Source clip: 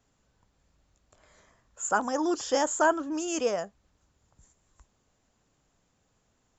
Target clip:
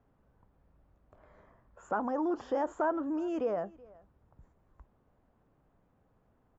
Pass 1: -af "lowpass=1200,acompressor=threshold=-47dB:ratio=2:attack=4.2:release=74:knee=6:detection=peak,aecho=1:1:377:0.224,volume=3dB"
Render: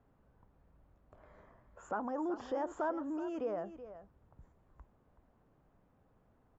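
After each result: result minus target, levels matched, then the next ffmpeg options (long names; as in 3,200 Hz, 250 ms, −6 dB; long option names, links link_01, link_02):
echo-to-direct +10.5 dB; downward compressor: peak gain reduction +5.5 dB
-af "lowpass=1200,acompressor=threshold=-47dB:ratio=2:attack=4.2:release=74:knee=6:detection=peak,aecho=1:1:377:0.0668,volume=3dB"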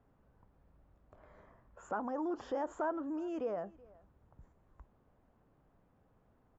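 downward compressor: peak gain reduction +5.5 dB
-af "lowpass=1200,acompressor=threshold=-36.5dB:ratio=2:attack=4.2:release=74:knee=6:detection=peak,aecho=1:1:377:0.0668,volume=3dB"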